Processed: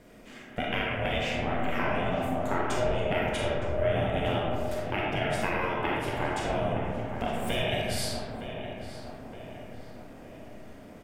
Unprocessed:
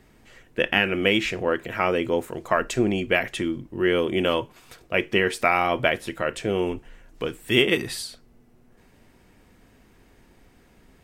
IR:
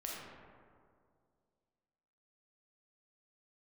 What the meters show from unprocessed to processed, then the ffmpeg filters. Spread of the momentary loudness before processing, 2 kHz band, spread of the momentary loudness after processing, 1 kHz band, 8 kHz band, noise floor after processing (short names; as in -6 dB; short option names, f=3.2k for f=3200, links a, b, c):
11 LU, -7.5 dB, 18 LU, -2.5 dB, -3.5 dB, -47 dBFS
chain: -filter_complex "[0:a]aeval=exprs='val(0)*sin(2*PI*250*n/s)':c=same,bandreject=f=4.1k:w=18,acompressor=threshold=-33dB:ratio=6,asplit=2[a][b];[b]adelay=915,lowpass=f=2.2k:p=1,volume=-9dB,asplit=2[c][d];[d]adelay=915,lowpass=f=2.2k:p=1,volume=0.54,asplit=2[e][f];[f]adelay=915,lowpass=f=2.2k:p=1,volume=0.54,asplit=2[g][h];[h]adelay=915,lowpass=f=2.2k:p=1,volume=0.54,asplit=2[i][j];[j]adelay=915,lowpass=f=2.2k:p=1,volume=0.54,asplit=2[k][l];[l]adelay=915,lowpass=f=2.2k:p=1,volume=0.54[m];[a][c][e][g][i][k][m]amix=inputs=7:normalize=0[n];[1:a]atrim=start_sample=2205[o];[n][o]afir=irnorm=-1:irlink=0,volume=7.5dB"